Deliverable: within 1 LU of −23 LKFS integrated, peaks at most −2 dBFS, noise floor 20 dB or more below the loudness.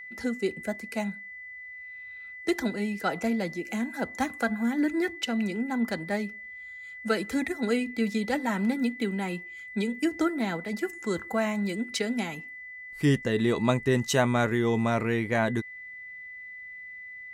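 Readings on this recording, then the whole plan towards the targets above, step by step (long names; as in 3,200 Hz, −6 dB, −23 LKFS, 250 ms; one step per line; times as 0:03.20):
interfering tone 2,000 Hz; level of the tone −40 dBFS; integrated loudness −28.5 LKFS; sample peak −10.0 dBFS; target loudness −23.0 LKFS
→ notch filter 2,000 Hz, Q 30
level +5.5 dB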